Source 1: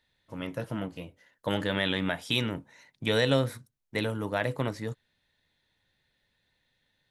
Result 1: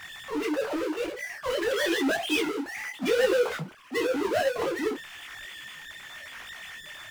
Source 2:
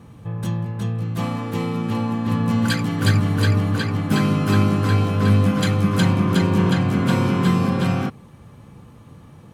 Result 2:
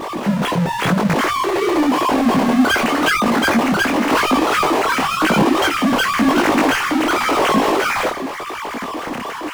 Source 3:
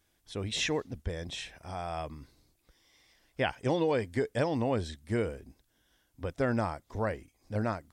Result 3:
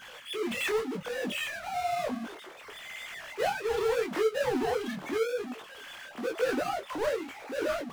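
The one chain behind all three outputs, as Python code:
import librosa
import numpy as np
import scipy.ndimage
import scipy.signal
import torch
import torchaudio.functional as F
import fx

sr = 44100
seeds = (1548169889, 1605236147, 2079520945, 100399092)

y = fx.sine_speech(x, sr)
y = fx.power_curve(y, sr, exponent=0.35)
y = fx.detune_double(y, sr, cents=32)
y = y * 10.0 ** (-2.5 / 20.0)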